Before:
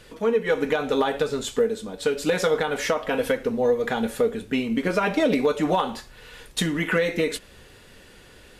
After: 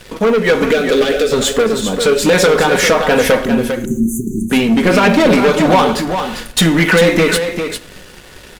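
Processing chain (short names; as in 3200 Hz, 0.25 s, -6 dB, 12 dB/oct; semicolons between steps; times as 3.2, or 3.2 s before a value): sample leveller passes 3; 0.71–1.32 fixed phaser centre 380 Hz, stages 4; 3.45–4.5 brick-wall FIR band-stop 400–5900 Hz; echo 0.399 s -7.5 dB; on a send at -13 dB: reverb RT60 0.85 s, pre-delay 5 ms; on the sum: gain +4.5 dB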